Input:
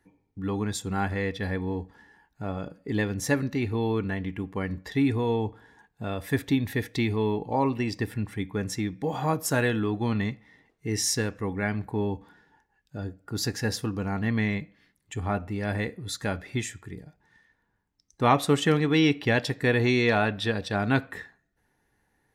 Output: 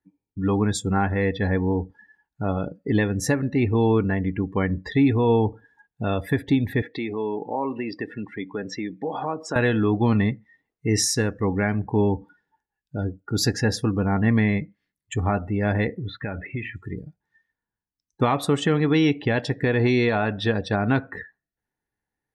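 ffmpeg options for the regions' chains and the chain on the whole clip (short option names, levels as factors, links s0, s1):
-filter_complex "[0:a]asettb=1/sr,asplit=3[s0][s1][s2];[s0]atrim=end=6.824[s3];[s1]atrim=start=6.82:end=9.56,asetpts=PTS-STARTPTS,afade=t=in:d=0.004:c=qsin,afade=t=out:st=2.736:d=0.004:c=qsin,highpass=270,lowpass=4300,acompressor=threshold=0.0178:ratio=2:attack=3.2:release=140:knee=1:detection=peak[s4];[s2]atrim=start=9.556[s5];[s3][s4]acrossfade=d=0.004:c1=hsin:c2=qsin[s6];[s6][s5]acrossfade=d=0.004:c1=qsin:c2=hsin,asettb=1/sr,asplit=3[s7][s8][s9];[s7]atrim=end=16.004[s10];[s8]atrim=start=16:end=16.76,asetpts=PTS-STARTPTS,afade=t=in:d=0.004:c=qsin,afade=t=out:st=0.756:d=0.004:c=qsin,lowpass=f=2600:t=q:w=2,aemphasis=mode=reproduction:type=75kf,acompressor=threshold=0.0251:ratio=10:attack=3.2:release=140:knee=1:detection=peak[s11];[s9]atrim=start=16.756[s12];[s10][s11]acrossfade=d=0.004:c1=hsin:c2=qsin[s13];[s13][s12]acrossfade=d=0.004:c1=qsin:c2=hsin,afftdn=nr=23:nf=-43,alimiter=limit=0.126:level=0:latency=1:release=304,adynamicequalizer=threshold=0.00501:dfrequency=1700:dqfactor=0.7:tfrequency=1700:tqfactor=0.7:attack=5:release=100:ratio=0.375:range=2.5:mode=cutabove:tftype=highshelf,volume=2.37"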